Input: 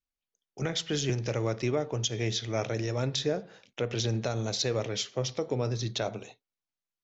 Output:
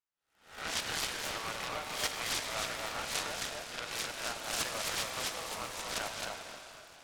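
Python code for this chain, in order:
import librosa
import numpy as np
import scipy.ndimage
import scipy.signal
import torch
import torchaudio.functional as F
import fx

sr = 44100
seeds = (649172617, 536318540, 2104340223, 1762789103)

y = fx.spec_swells(x, sr, rise_s=0.47)
y = scipy.signal.sosfilt(scipy.signal.butter(4, 880.0, 'highpass', fs=sr, output='sos'), y)
y = fx.high_shelf(y, sr, hz=3700.0, db=-9.5)
y = y + 10.0 ** (-3.5 / 20.0) * np.pad(y, (int(265 * sr / 1000.0), 0))[:len(y)]
y = fx.rev_plate(y, sr, seeds[0], rt60_s=3.7, hf_ratio=0.95, predelay_ms=0, drr_db=4.5)
y = fx.noise_mod_delay(y, sr, seeds[1], noise_hz=1200.0, depth_ms=0.075)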